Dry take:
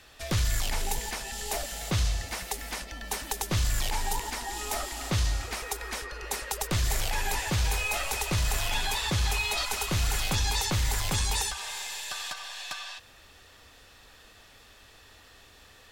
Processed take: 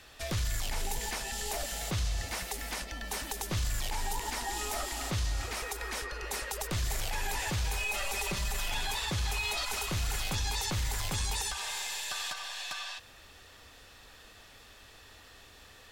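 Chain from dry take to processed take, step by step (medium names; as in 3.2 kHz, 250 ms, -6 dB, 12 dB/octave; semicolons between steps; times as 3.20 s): 7.77–8.68 s: comb 5.1 ms, depth 92%; peak limiter -24.5 dBFS, peak gain reduction 10 dB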